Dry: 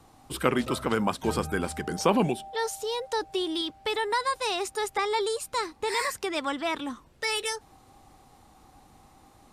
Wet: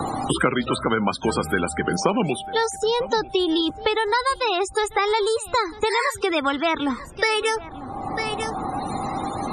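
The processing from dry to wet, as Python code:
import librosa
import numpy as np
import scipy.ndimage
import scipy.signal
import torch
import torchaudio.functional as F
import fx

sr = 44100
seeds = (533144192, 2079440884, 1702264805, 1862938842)

p1 = fx.dynamic_eq(x, sr, hz=1400.0, q=6.2, threshold_db=-50.0, ratio=4.0, max_db=4)
p2 = fx.spec_topn(p1, sr, count=64)
p3 = p2 + fx.echo_single(p2, sr, ms=946, db=-24.0, dry=0)
p4 = fx.band_squash(p3, sr, depth_pct=100)
y = F.gain(torch.from_numpy(p4), 6.0).numpy()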